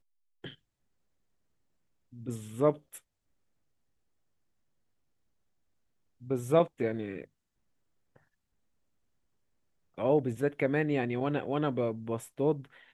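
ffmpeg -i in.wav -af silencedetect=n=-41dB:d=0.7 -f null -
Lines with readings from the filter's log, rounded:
silence_start: 0.52
silence_end: 2.16 | silence_duration: 1.64
silence_start: 2.98
silence_end: 6.24 | silence_duration: 3.26
silence_start: 7.24
silence_end: 9.98 | silence_duration: 2.74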